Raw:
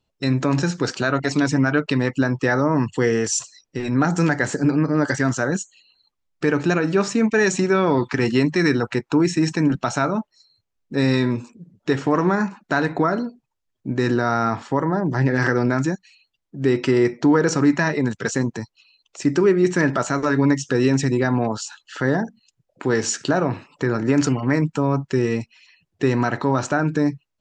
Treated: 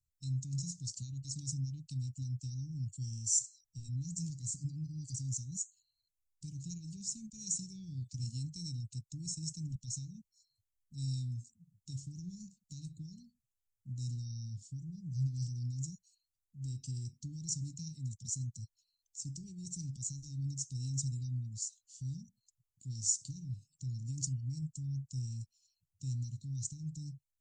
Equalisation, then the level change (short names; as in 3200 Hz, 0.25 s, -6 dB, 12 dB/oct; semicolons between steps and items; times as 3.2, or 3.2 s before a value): inverse Chebyshev band-stop 520–1700 Hz, stop band 80 dB; low shelf 280 Hz -6 dB; -3.0 dB